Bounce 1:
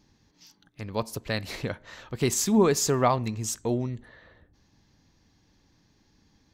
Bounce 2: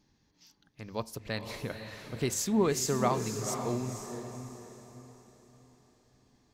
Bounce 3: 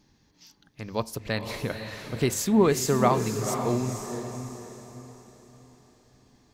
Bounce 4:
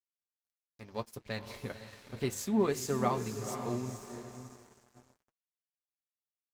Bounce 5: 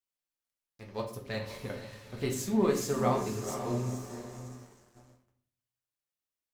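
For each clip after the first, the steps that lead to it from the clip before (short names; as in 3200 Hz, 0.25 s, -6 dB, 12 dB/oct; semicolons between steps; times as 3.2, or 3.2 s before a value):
notches 50/100 Hz; diffused feedback echo 0.501 s, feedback 41%, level -7.5 dB; gain -6 dB
dynamic EQ 6100 Hz, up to -5 dB, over -47 dBFS, Q 1.1; gain +6.5 dB
crossover distortion -42 dBFS; notch comb 160 Hz; gain -7.5 dB
shoebox room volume 70 m³, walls mixed, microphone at 0.62 m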